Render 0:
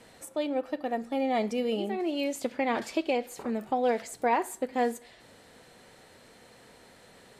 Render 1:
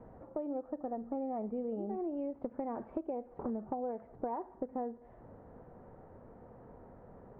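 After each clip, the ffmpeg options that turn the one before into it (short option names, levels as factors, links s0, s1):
-af "lowpass=f=1100:w=0.5412,lowpass=f=1100:w=1.3066,acompressor=threshold=0.0141:ratio=6,lowshelf=f=110:g=11.5,volume=1.12"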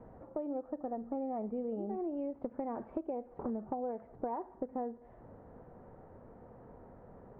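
-af anull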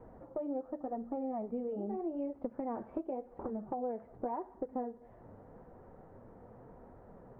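-af "flanger=delay=2:depth=9.4:regen=-40:speed=0.86:shape=triangular,volume=1.5"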